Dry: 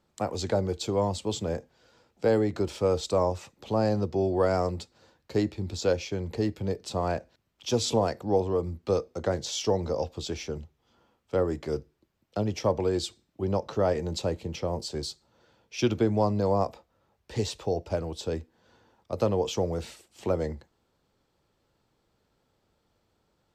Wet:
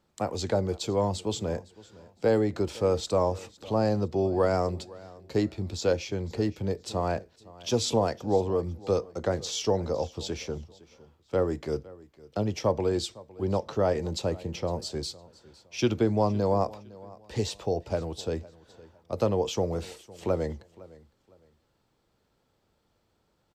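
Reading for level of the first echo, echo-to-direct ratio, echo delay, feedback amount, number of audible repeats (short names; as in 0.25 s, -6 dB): -21.0 dB, -20.5 dB, 0.509 s, 28%, 2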